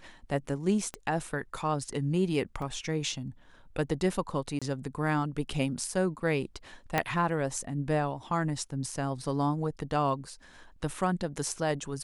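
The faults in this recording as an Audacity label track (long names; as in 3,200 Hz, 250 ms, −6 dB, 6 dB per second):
0.940000	0.940000	click −22 dBFS
2.620000	2.620000	drop-out 3 ms
4.590000	4.620000	drop-out 26 ms
6.980000	6.980000	click −11 dBFS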